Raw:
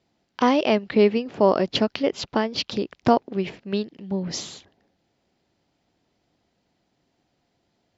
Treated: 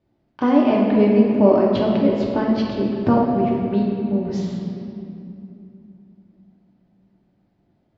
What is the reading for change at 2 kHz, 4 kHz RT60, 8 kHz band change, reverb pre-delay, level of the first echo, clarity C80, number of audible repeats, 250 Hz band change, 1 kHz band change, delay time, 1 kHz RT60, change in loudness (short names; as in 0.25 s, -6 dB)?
-3.0 dB, 1.8 s, n/a, 3 ms, none, 2.0 dB, none, +8.0 dB, +0.5 dB, none, 2.6 s, +4.5 dB